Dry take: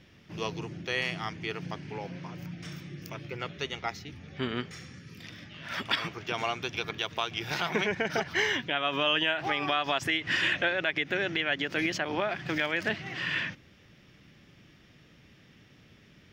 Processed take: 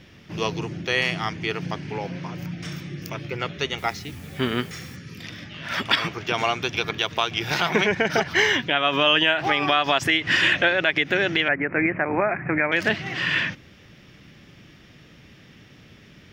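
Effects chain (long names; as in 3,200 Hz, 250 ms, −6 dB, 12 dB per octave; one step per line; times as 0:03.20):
0:03.77–0:04.95: background noise white −60 dBFS
0:11.48–0:12.72: Butterworth low-pass 2,400 Hz 96 dB per octave
level +8 dB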